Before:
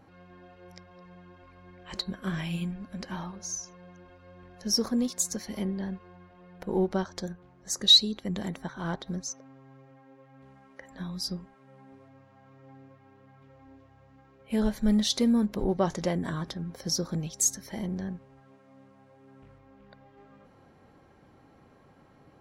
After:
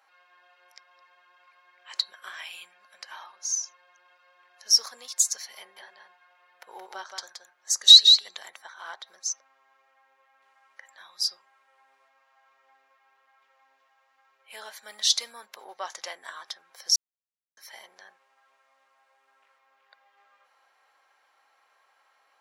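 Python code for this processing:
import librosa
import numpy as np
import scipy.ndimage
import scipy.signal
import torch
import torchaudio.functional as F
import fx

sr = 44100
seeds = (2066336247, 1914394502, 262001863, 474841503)

y = fx.echo_single(x, sr, ms=173, db=-5.0, at=(5.59, 8.37))
y = fx.edit(y, sr, fx.silence(start_s=16.96, length_s=0.61), tone=tone)
y = scipy.signal.sosfilt(scipy.signal.bessel(4, 1200.0, 'highpass', norm='mag', fs=sr, output='sos'), y)
y = fx.dynamic_eq(y, sr, hz=5300.0, q=0.77, threshold_db=-42.0, ratio=4.0, max_db=6)
y = y * librosa.db_to_amplitude(2.0)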